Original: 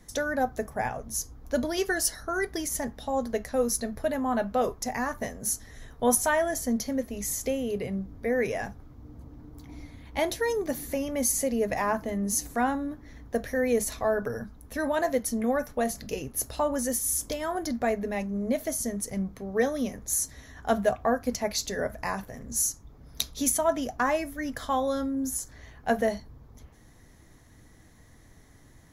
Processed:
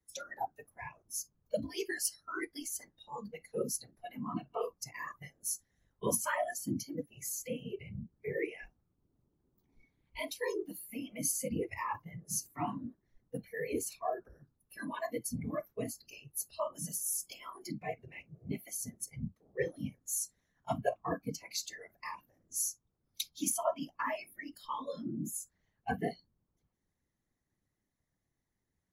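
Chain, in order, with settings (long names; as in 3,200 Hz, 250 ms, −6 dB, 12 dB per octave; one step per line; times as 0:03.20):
mains-hum notches 50/100/150/200/250 Hz
random phases in short frames
noise reduction from a noise print of the clip's start 22 dB
level −7.5 dB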